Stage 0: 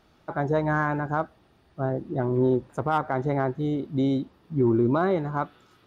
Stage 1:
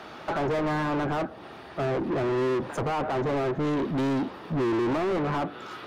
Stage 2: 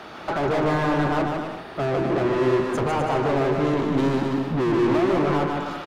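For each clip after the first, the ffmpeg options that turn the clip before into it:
-filter_complex "[0:a]acrossover=split=160|530[s0][s1][s2];[s2]acompressor=threshold=0.0126:ratio=12[s3];[s0][s1][s3]amix=inputs=3:normalize=0,asplit=2[s4][s5];[s5]highpass=f=720:p=1,volume=79.4,asoftclip=type=tanh:threshold=0.237[s6];[s4][s6]amix=inputs=2:normalize=0,lowpass=f=1800:p=1,volume=0.501,volume=0.447"
-af "aecho=1:1:150|255|328.5|380|416:0.631|0.398|0.251|0.158|0.1,volume=1.41"

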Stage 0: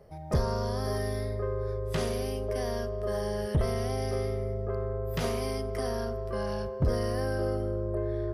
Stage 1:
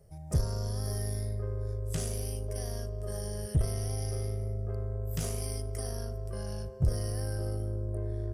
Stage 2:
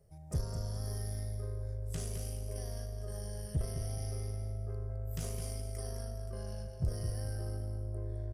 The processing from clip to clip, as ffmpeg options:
-af "equalizer=f=125:t=o:w=1:g=3,equalizer=f=250:t=o:w=1:g=-9,equalizer=f=500:t=o:w=1:g=-6,equalizer=f=1000:t=o:w=1:g=-12,equalizer=f=2000:t=o:w=1:g=-7,equalizer=f=4000:t=o:w=1:g=-9,equalizer=f=8000:t=o:w=1:g=11,aeval=exprs='0.15*(cos(1*acos(clip(val(0)/0.15,-1,1)))-cos(1*PI/2))+0.0133*(cos(4*acos(clip(val(0)/0.15,-1,1)))-cos(4*PI/2))':c=same"
-af "aecho=1:1:211|422|633|844:0.422|0.122|0.0355|0.0103,volume=0.473"

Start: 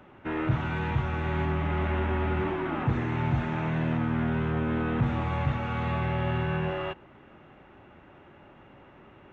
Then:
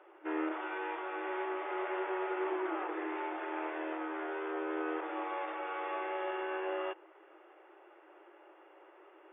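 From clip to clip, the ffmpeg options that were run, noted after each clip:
-af "afftfilt=real='re*between(b*sr/4096,310,3600)':imag='im*between(b*sr/4096,310,3600)':win_size=4096:overlap=0.75,aemphasis=mode=reproduction:type=75fm,volume=0.631"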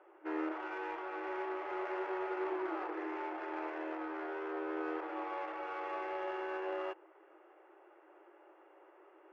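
-af "adynamicsmooth=sensitivity=6:basefreq=2900,volume=0.794"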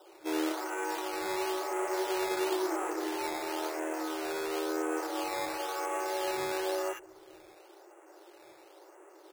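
-filter_complex "[0:a]acrossover=split=200|1300[s0][s1][s2];[s2]adelay=60[s3];[s0]adelay=610[s4];[s4][s1][s3]amix=inputs=3:normalize=0,acrusher=samples=10:mix=1:aa=0.000001:lfo=1:lforange=10:lforate=0.97,volume=2.24"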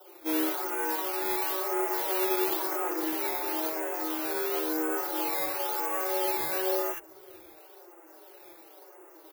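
-filter_complex "[0:a]acrossover=split=180|1500|2200[s0][s1][s2][s3];[s3]aexciter=amount=6.1:drive=3.9:freq=11000[s4];[s0][s1][s2][s4]amix=inputs=4:normalize=0,asplit=2[s5][s6];[s6]adelay=5,afreqshift=-1.8[s7];[s5][s7]amix=inputs=2:normalize=1,volume=1.68"

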